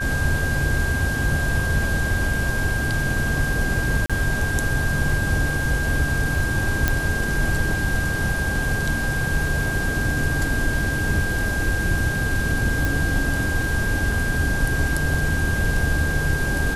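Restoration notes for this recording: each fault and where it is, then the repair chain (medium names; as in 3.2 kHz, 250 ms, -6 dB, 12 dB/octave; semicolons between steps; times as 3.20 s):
whine 1.6 kHz -25 dBFS
4.06–4.10 s: dropout 36 ms
6.88 s: pop -4 dBFS
12.85 s: pop
14.12 s: dropout 3.1 ms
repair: de-click; band-stop 1.6 kHz, Q 30; interpolate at 4.06 s, 36 ms; interpolate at 14.12 s, 3.1 ms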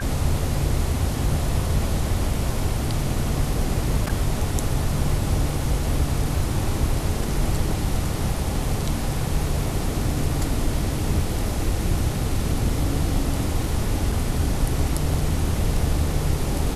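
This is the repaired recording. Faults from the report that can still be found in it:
nothing left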